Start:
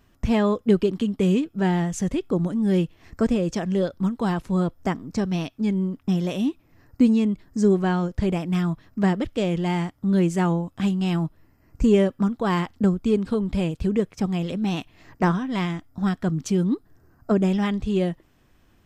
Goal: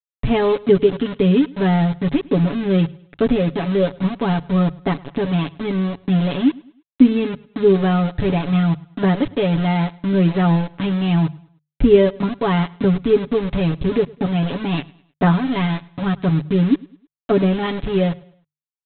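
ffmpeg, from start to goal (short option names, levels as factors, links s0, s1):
-af "aresample=8000,aeval=exprs='val(0)*gte(abs(val(0)),0.0335)':c=same,aresample=44100,equalizer=f=1700:w=0.33:g=-4,bandreject=f=50:t=h:w=6,bandreject=f=100:t=h:w=6,bandreject=f=150:t=h:w=6,aecho=1:1:7.1:0.8,aecho=1:1:104|208|312:0.0708|0.0276|0.0108,volume=1.88"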